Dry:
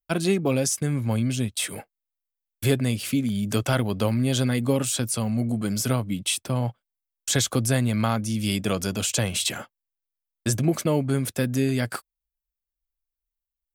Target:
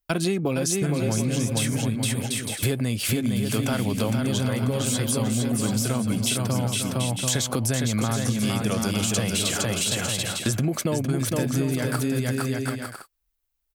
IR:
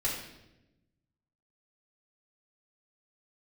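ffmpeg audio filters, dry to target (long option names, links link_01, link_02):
-filter_complex "[0:a]asplit=2[link_01][link_02];[link_02]alimiter=limit=-17.5dB:level=0:latency=1,volume=3dB[link_03];[link_01][link_03]amix=inputs=2:normalize=0,aecho=1:1:460|736|901.6|1001|1061:0.631|0.398|0.251|0.158|0.1,acompressor=threshold=-21dB:ratio=6"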